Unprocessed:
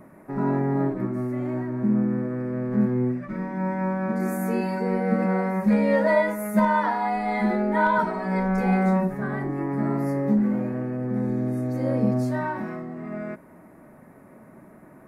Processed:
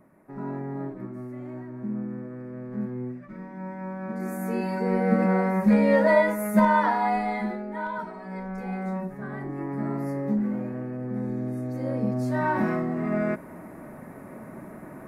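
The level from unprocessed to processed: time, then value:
0:03.82 −9.5 dB
0:05.02 +1 dB
0:07.17 +1 dB
0:07.63 −11 dB
0:08.72 −11 dB
0:09.62 −4.5 dB
0:12.16 −4.5 dB
0:12.62 +7 dB

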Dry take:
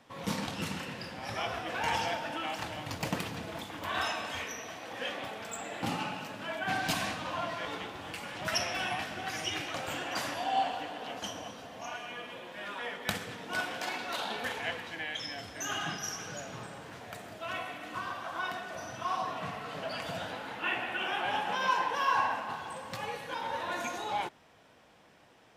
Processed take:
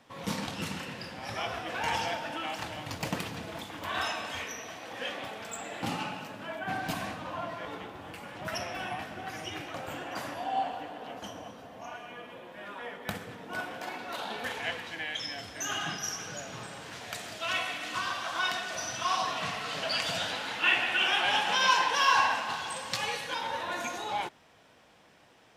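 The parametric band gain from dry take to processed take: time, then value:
parametric band 5,300 Hz 2.9 octaves
0:06.02 +1 dB
0:06.69 −7.5 dB
0:13.96 −7.5 dB
0:14.67 +3 dB
0:16.40 +3 dB
0:17.24 +13.5 dB
0:23.13 +13.5 dB
0:23.68 +2.5 dB

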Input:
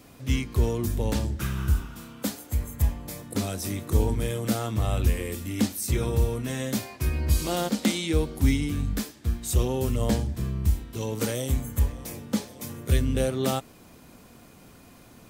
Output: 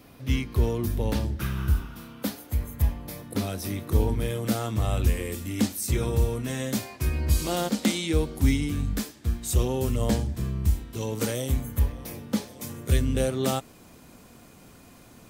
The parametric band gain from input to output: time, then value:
parametric band 7,500 Hz 0.6 octaves
0:04.20 −8 dB
0:04.68 +0.5 dB
0:11.28 +0.5 dB
0:11.94 −9.5 dB
0:12.70 +2 dB

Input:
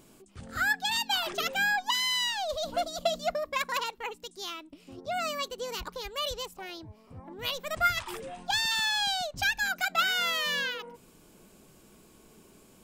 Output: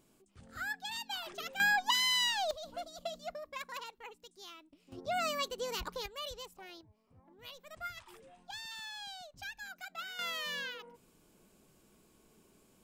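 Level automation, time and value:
−11.5 dB
from 0:01.60 −1.5 dB
from 0:02.51 −12.5 dB
from 0:04.92 −2 dB
from 0:06.06 −9.5 dB
from 0:06.81 −17 dB
from 0:10.19 −9 dB

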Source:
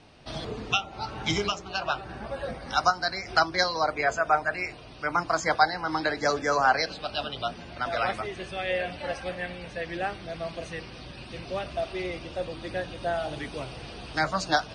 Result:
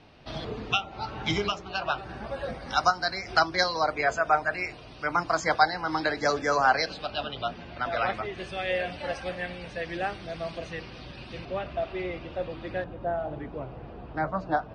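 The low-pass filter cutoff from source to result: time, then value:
4,500 Hz
from 0:01.98 7,300 Hz
from 0:07.06 3,800 Hz
from 0:08.38 8,200 Hz
from 0:10.58 5,100 Hz
from 0:11.45 2,700 Hz
from 0:12.84 1,100 Hz

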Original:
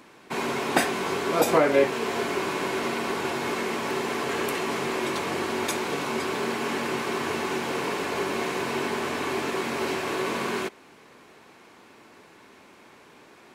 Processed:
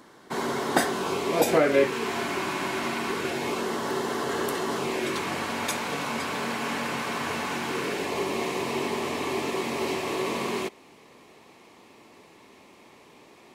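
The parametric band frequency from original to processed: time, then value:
parametric band −13 dB 0.28 octaves
0:00.90 2,500 Hz
0:02.19 460 Hz
0:02.98 460 Hz
0:03.68 2,400 Hz
0:04.75 2,400 Hz
0:05.37 370 Hz
0:07.54 370 Hz
0:08.09 1,500 Hz

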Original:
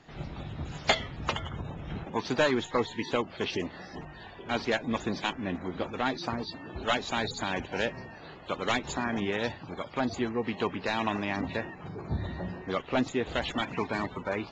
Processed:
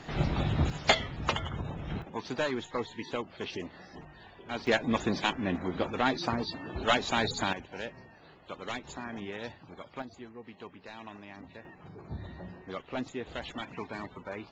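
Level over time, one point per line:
+10 dB
from 0:00.70 +1 dB
from 0:02.02 −6 dB
from 0:04.67 +2 dB
from 0:07.53 −9 dB
from 0:10.02 −16 dB
from 0:11.65 −8 dB

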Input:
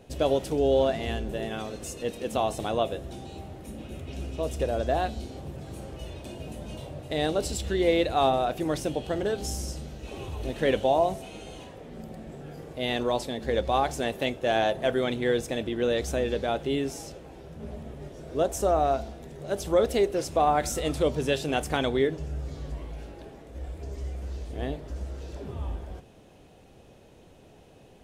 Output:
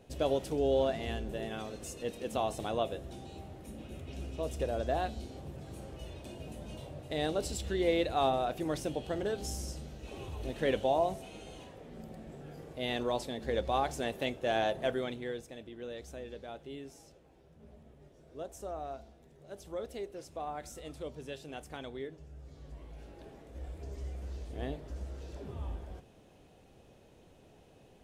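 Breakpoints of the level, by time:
0:14.86 −6 dB
0:15.50 −17 dB
0:22.33 −17 dB
0:23.31 −6 dB

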